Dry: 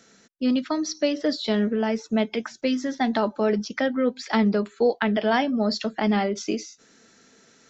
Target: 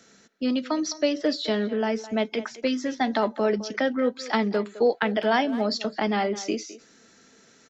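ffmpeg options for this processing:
ffmpeg -i in.wav -filter_complex "[0:a]acrossover=split=250[link_01][link_02];[link_01]acompressor=threshold=-35dB:ratio=6[link_03];[link_03][link_02]amix=inputs=2:normalize=0,asplit=2[link_04][link_05];[link_05]adelay=210,highpass=300,lowpass=3400,asoftclip=type=hard:threshold=-17dB,volume=-15dB[link_06];[link_04][link_06]amix=inputs=2:normalize=0" out.wav

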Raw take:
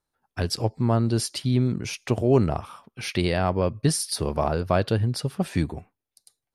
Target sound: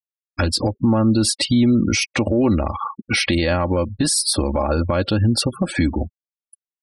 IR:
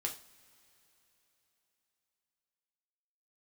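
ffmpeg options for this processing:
-af "afftfilt=real='re*gte(hypot(re,im),0.0112)':imag='im*gte(hypot(re,im),0.0112)':win_size=1024:overlap=0.75,asetrate=42336,aresample=44100,aecho=1:1:3.6:0.72,acompressor=threshold=-30dB:ratio=6,adynamicequalizer=threshold=0.00447:dfrequency=630:dqfactor=1.5:tfrequency=630:tqfactor=1.5:attack=5:release=100:ratio=0.375:range=2:mode=cutabove:tftype=bell,alimiter=level_in=25.5dB:limit=-1dB:release=50:level=0:latency=1,volume=-8dB"

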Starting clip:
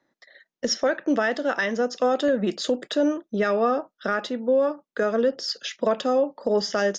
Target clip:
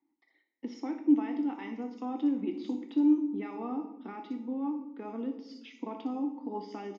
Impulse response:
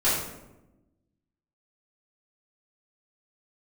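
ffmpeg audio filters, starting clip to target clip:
-filter_complex "[0:a]asplit=3[link_01][link_02][link_03];[link_01]bandpass=frequency=300:width_type=q:width=8,volume=0dB[link_04];[link_02]bandpass=frequency=870:width_type=q:width=8,volume=-6dB[link_05];[link_03]bandpass=frequency=2240:width_type=q:width=8,volume=-9dB[link_06];[link_04][link_05][link_06]amix=inputs=3:normalize=0,acrossover=split=5300[link_07][link_08];[link_08]adelay=60[link_09];[link_07][link_09]amix=inputs=2:normalize=0,asplit=2[link_10][link_11];[1:a]atrim=start_sample=2205,highshelf=frequency=4700:gain=9[link_12];[link_11][link_12]afir=irnorm=-1:irlink=0,volume=-19dB[link_13];[link_10][link_13]amix=inputs=2:normalize=0"

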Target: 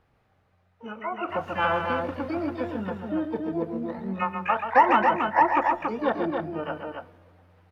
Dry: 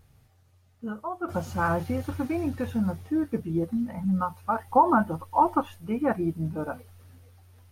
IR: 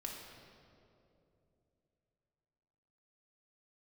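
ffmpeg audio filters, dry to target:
-filter_complex "[0:a]acrossover=split=320 2500:gain=0.224 1 0.0708[link_01][link_02][link_03];[link_01][link_02][link_03]amix=inputs=3:normalize=0,acontrast=75,aecho=1:1:134.1|279.9:0.447|0.562,asplit=2[link_04][link_05];[1:a]atrim=start_sample=2205,asetrate=66150,aresample=44100[link_06];[link_05][link_06]afir=irnorm=-1:irlink=0,volume=-14dB[link_07];[link_04][link_07]amix=inputs=2:normalize=0,asplit=2[link_08][link_09];[link_09]asetrate=88200,aresample=44100,atempo=0.5,volume=-10dB[link_10];[link_08][link_10]amix=inputs=2:normalize=0,volume=-5.5dB"

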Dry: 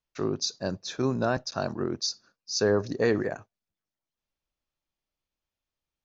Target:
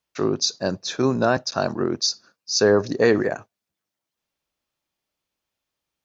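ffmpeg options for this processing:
ffmpeg -i in.wav -af "highpass=frequency=150:poles=1,volume=7.5dB" out.wav

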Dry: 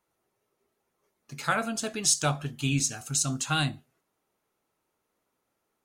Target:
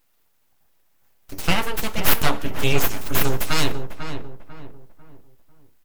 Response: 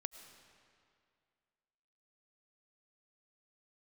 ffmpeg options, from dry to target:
-filter_complex "[0:a]aexciter=amount=6.5:drive=3.2:freq=12000,aeval=exprs='abs(val(0))':channel_layout=same,asplit=2[link_01][link_02];[link_02]adelay=496,lowpass=frequency=1500:poles=1,volume=-7.5dB,asplit=2[link_03][link_04];[link_04]adelay=496,lowpass=frequency=1500:poles=1,volume=0.38,asplit=2[link_05][link_06];[link_06]adelay=496,lowpass=frequency=1500:poles=1,volume=0.38,asplit=2[link_07][link_08];[link_08]adelay=496,lowpass=frequency=1500:poles=1,volume=0.38[link_09];[link_01][link_03][link_05][link_07][link_09]amix=inputs=5:normalize=0,asplit=2[link_10][link_11];[1:a]atrim=start_sample=2205,afade=type=out:start_time=0.23:duration=0.01,atrim=end_sample=10584,lowshelf=frequency=390:gain=8[link_12];[link_11][link_12]afir=irnorm=-1:irlink=0,volume=-6.5dB[link_13];[link_10][link_13]amix=inputs=2:normalize=0,volume=6dB"

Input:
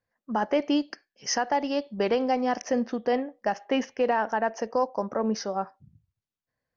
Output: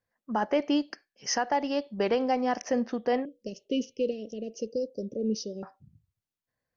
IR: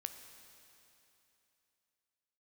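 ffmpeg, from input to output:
-filter_complex "[0:a]asettb=1/sr,asplit=3[link_01][link_02][link_03];[link_01]atrim=end=3.254[link_04];[link_02]atrim=start=3.25:end=5.63,asetpts=PTS-STARTPTS,afade=type=in:duration=0.004:curve=qsin,afade=type=out:start_time=2.376:duration=0.004:curve=qsin,asuperstop=centerf=1200:order=12:qfactor=0.53[link_05];[link_03]atrim=start=5.626[link_06];[link_04][link_05]acrossfade=duration=0.004:curve1=hsin:curve2=qsin[link_07];[link_07][link_06]acrossfade=duration=0.004:curve1=qsin:curve2=hsin,volume=-1.5dB"

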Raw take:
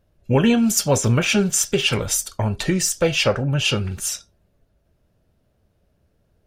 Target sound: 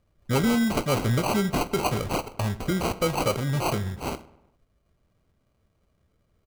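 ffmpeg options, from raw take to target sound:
ffmpeg -i in.wav -filter_complex "[0:a]acrusher=samples=25:mix=1:aa=0.000001,asplit=2[link_01][link_02];[link_02]adelay=102,lowpass=frequency=2900:poles=1,volume=-19dB,asplit=2[link_03][link_04];[link_04]adelay=102,lowpass=frequency=2900:poles=1,volume=0.49,asplit=2[link_05][link_06];[link_06]adelay=102,lowpass=frequency=2900:poles=1,volume=0.49,asplit=2[link_07][link_08];[link_08]adelay=102,lowpass=frequency=2900:poles=1,volume=0.49[link_09];[link_01][link_03][link_05][link_07][link_09]amix=inputs=5:normalize=0,asoftclip=type=tanh:threshold=-10.5dB,volume=-4.5dB" out.wav

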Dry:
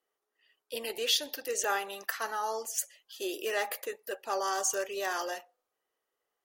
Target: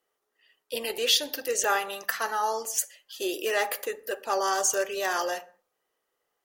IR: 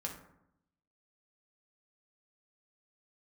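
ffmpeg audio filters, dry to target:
-filter_complex "[0:a]asplit=2[link_01][link_02];[1:a]atrim=start_sample=2205,afade=type=out:start_time=0.28:duration=0.01,atrim=end_sample=12789,lowshelf=frequency=200:gain=7[link_03];[link_02][link_03]afir=irnorm=-1:irlink=0,volume=-10.5dB[link_04];[link_01][link_04]amix=inputs=2:normalize=0,volume=3.5dB"

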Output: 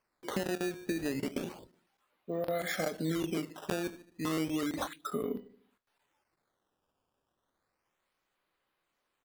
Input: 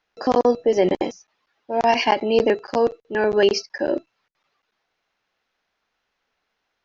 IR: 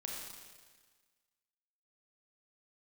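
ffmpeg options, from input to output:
-filter_complex "[0:a]bandreject=frequency=870:width=24,asetrate=32667,aresample=44100,acompressor=threshold=-23dB:ratio=12,highshelf=frequency=6200:gain=9,asplit=2[link_01][link_02];[link_02]adelay=25,volume=-12.5dB[link_03];[link_01][link_03]amix=inputs=2:normalize=0,asplit=2[link_04][link_05];[link_05]adelay=75,lowpass=frequency=930:poles=1,volume=-15dB,asplit=2[link_06][link_07];[link_07]adelay=75,lowpass=frequency=930:poles=1,volume=0.52,asplit=2[link_08][link_09];[link_09]adelay=75,lowpass=frequency=930:poles=1,volume=0.52,asplit=2[link_10][link_11];[link_11]adelay=75,lowpass=frequency=930:poles=1,volume=0.52,asplit=2[link_12][link_13];[link_13]adelay=75,lowpass=frequency=930:poles=1,volume=0.52[link_14];[link_04][link_06][link_08][link_10][link_12][link_14]amix=inputs=6:normalize=0,acrusher=samples=12:mix=1:aa=0.000001:lfo=1:lforange=19.2:lforate=0.32,volume=-7dB"

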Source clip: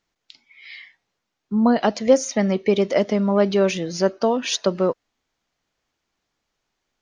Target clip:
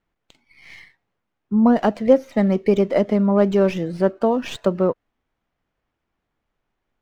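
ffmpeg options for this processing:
ffmpeg -i in.wav -filter_complex "[0:a]lowpass=frequency=3500:width=0.5412,lowpass=frequency=3500:width=1.3066,lowshelf=frequency=180:gain=6.5,acrossover=split=1900[link_01][link_02];[link_02]aeval=exprs='max(val(0),0)':channel_layout=same[link_03];[link_01][link_03]amix=inputs=2:normalize=0" out.wav

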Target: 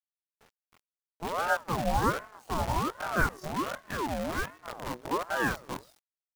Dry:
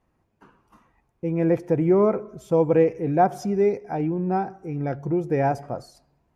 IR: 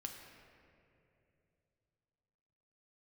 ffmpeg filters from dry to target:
-af "afftfilt=real='re':imag='-im':win_size=2048:overlap=0.75,acrusher=bits=6:dc=4:mix=0:aa=0.000001,aeval=exprs='val(0)*sin(2*PI*730*n/s+730*0.5/1.3*sin(2*PI*1.3*n/s))':channel_layout=same,volume=-1dB"

